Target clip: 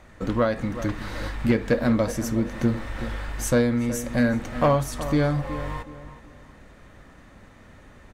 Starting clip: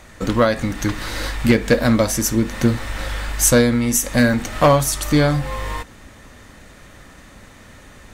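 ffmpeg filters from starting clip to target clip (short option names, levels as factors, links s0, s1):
-filter_complex "[0:a]asplit=2[s0][s1];[s1]adelay=371,lowpass=f=2500:p=1,volume=0.224,asplit=2[s2][s3];[s3]adelay=371,lowpass=f=2500:p=1,volume=0.31,asplit=2[s4][s5];[s5]adelay=371,lowpass=f=2500:p=1,volume=0.31[s6];[s0][s2][s4][s6]amix=inputs=4:normalize=0,asplit=2[s7][s8];[s8]asoftclip=type=tanh:threshold=0.178,volume=0.266[s9];[s7][s9]amix=inputs=2:normalize=0,highshelf=f=3100:g=-11.5,volume=0.447"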